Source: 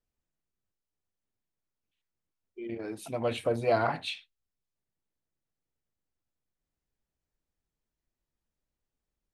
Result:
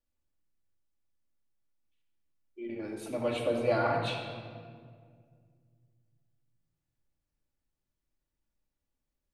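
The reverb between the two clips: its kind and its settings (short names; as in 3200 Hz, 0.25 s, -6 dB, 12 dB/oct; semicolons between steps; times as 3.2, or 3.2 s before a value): shoebox room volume 3300 m³, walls mixed, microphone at 2.4 m; gain -4 dB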